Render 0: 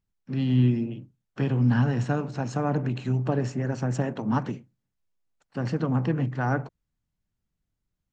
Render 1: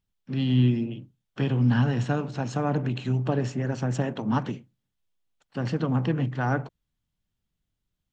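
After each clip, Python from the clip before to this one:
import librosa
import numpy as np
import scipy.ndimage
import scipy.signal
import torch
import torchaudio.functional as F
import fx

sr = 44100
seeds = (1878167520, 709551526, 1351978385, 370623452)

y = fx.peak_eq(x, sr, hz=3300.0, db=7.0, octaves=0.58)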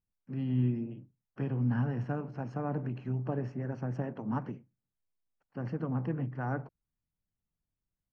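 y = scipy.signal.lfilter(np.full(12, 1.0 / 12), 1.0, x)
y = y * 10.0 ** (-8.0 / 20.0)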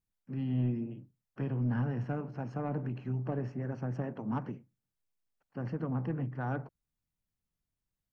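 y = 10.0 ** (-23.0 / 20.0) * np.tanh(x / 10.0 ** (-23.0 / 20.0))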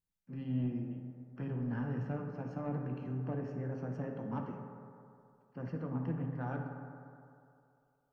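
y = fx.rev_fdn(x, sr, rt60_s=2.6, lf_ratio=0.8, hf_ratio=0.35, size_ms=34.0, drr_db=2.0)
y = y * 10.0 ** (-5.5 / 20.0)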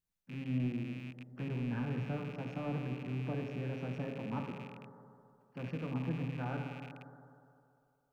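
y = fx.rattle_buzz(x, sr, strikes_db=-49.0, level_db=-41.0)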